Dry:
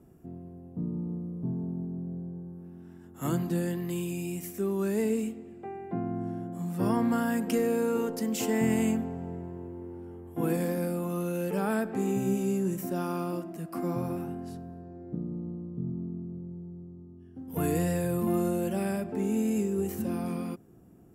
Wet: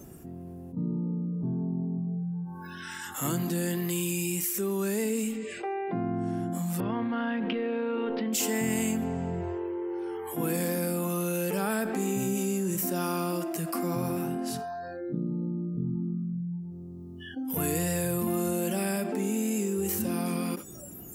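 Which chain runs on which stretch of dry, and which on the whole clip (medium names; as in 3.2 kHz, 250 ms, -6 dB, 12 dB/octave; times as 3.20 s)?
6.80–8.33 s: steep low-pass 3.7 kHz 48 dB/octave + compression 16:1, threshold -28 dBFS + bass shelf 160 Hz +3 dB
whole clip: treble shelf 2.1 kHz +10.5 dB; spectral noise reduction 27 dB; level flattener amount 70%; trim -4.5 dB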